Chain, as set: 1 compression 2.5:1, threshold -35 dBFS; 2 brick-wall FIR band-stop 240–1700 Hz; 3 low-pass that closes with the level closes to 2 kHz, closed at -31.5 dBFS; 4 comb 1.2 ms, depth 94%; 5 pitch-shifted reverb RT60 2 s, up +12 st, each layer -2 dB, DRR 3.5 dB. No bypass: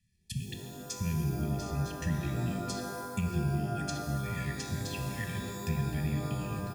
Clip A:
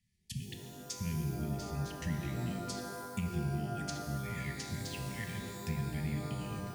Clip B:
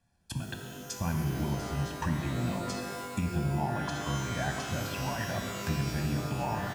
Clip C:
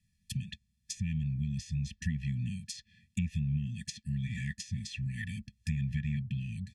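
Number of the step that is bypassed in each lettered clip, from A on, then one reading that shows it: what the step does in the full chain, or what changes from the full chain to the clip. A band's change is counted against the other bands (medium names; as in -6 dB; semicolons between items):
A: 4, loudness change -4.0 LU; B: 2, 1 kHz band +3.0 dB; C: 5, momentary loudness spread change +1 LU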